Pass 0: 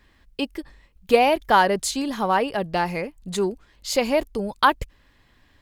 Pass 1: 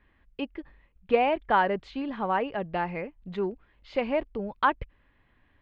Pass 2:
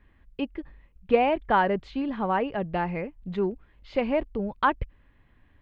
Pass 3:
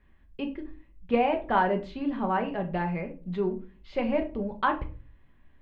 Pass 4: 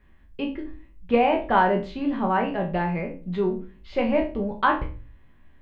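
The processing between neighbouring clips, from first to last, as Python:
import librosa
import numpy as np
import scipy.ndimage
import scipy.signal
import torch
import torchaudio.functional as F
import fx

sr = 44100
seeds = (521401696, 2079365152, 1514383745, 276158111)

y1 = scipy.signal.sosfilt(scipy.signal.butter(4, 2800.0, 'lowpass', fs=sr, output='sos'), x)
y1 = y1 * 10.0 ** (-6.0 / 20.0)
y2 = fx.low_shelf(y1, sr, hz=290.0, db=7.0)
y3 = fx.room_shoebox(y2, sr, seeds[0], volume_m3=220.0, walls='furnished', distance_m=1.1)
y3 = y3 * 10.0 ** (-4.0 / 20.0)
y4 = fx.spec_trails(y3, sr, decay_s=0.32)
y4 = y4 * 10.0 ** (3.5 / 20.0)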